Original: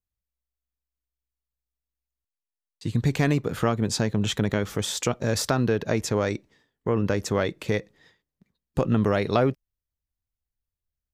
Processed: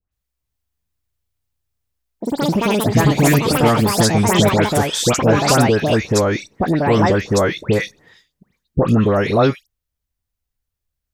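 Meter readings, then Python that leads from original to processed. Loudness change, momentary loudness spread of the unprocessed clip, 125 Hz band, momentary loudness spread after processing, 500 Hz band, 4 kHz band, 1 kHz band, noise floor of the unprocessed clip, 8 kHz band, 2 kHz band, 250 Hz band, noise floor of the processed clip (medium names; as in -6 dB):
+9.5 dB, 7 LU, +9.0 dB, 7 LU, +9.5 dB, +10.0 dB, +13.0 dB, under -85 dBFS, +10.5 dB, +10.5 dB, +10.0 dB, -80 dBFS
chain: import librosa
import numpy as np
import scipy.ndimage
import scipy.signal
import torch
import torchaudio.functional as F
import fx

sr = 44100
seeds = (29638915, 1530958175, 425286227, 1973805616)

p1 = fx.rider(x, sr, range_db=10, speed_s=0.5)
p2 = x + F.gain(torch.from_numpy(p1), -2.5).numpy()
p3 = fx.dispersion(p2, sr, late='highs', ms=124.0, hz=1900.0)
p4 = fx.echo_pitch(p3, sr, ms=398, semitones=6, count=2, db_per_echo=-3.0)
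y = F.gain(torch.from_numpy(p4), 3.5).numpy()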